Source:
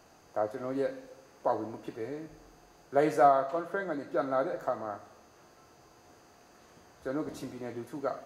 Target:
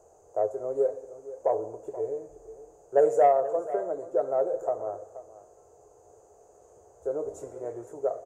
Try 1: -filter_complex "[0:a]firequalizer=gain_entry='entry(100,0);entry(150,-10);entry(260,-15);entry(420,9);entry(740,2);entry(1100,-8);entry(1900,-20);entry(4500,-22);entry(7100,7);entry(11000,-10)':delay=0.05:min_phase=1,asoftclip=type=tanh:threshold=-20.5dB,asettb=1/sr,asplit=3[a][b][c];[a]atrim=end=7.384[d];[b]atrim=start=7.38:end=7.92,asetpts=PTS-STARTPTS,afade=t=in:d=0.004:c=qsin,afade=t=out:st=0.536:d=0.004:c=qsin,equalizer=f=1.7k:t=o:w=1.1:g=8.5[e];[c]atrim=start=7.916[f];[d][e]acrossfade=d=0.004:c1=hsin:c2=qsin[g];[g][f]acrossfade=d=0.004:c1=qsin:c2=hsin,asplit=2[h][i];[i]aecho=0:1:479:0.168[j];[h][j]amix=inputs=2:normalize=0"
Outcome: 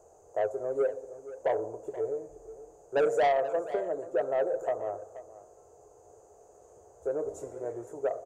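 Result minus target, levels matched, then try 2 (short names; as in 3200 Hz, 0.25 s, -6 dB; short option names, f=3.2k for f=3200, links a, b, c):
soft clip: distortion +14 dB
-filter_complex "[0:a]firequalizer=gain_entry='entry(100,0);entry(150,-10);entry(260,-15);entry(420,9);entry(740,2);entry(1100,-8);entry(1900,-20);entry(4500,-22);entry(7100,7);entry(11000,-10)':delay=0.05:min_phase=1,asoftclip=type=tanh:threshold=-9dB,asettb=1/sr,asplit=3[a][b][c];[a]atrim=end=7.384[d];[b]atrim=start=7.38:end=7.92,asetpts=PTS-STARTPTS,afade=t=in:d=0.004:c=qsin,afade=t=out:st=0.536:d=0.004:c=qsin,equalizer=f=1.7k:t=o:w=1.1:g=8.5[e];[c]atrim=start=7.916[f];[d][e]acrossfade=d=0.004:c1=hsin:c2=qsin[g];[g][f]acrossfade=d=0.004:c1=qsin:c2=hsin,asplit=2[h][i];[i]aecho=0:1:479:0.168[j];[h][j]amix=inputs=2:normalize=0"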